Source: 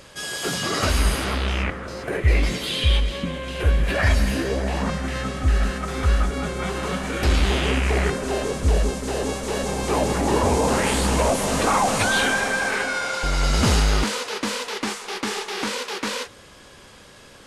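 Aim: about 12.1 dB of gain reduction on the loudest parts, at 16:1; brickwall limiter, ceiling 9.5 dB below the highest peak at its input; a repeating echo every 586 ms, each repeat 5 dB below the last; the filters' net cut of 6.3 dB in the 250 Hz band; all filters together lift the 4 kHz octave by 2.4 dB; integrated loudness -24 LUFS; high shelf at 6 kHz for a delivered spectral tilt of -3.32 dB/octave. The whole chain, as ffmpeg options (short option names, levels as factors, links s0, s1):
-af "equalizer=f=250:t=o:g=-8.5,equalizer=f=4000:t=o:g=4.5,highshelf=f=6000:g=-4,acompressor=threshold=0.0501:ratio=16,alimiter=limit=0.0631:level=0:latency=1,aecho=1:1:586|1172|1758|2344|2930|3516|4102:0.562|0.315|0.176|0.0988|0.0553|0.031|0.0173,volume=2.37"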